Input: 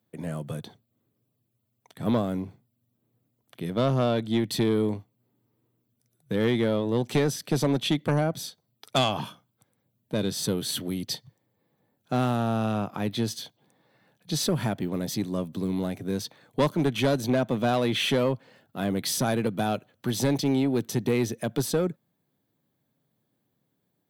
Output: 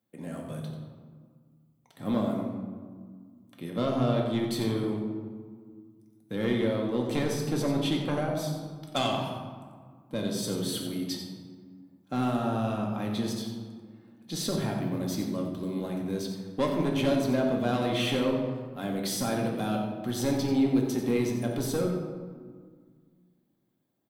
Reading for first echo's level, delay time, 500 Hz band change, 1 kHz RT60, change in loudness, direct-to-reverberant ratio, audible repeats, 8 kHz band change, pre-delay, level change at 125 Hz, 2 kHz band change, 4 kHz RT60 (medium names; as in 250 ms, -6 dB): -9.0 dB, 90 ms, -2.5 dB, 1.8 s, -2.5 dB, -0.5 dB, 1, -4.5 dB, 3 ms, -3.5 dB, -3.5 dB, 0.90 s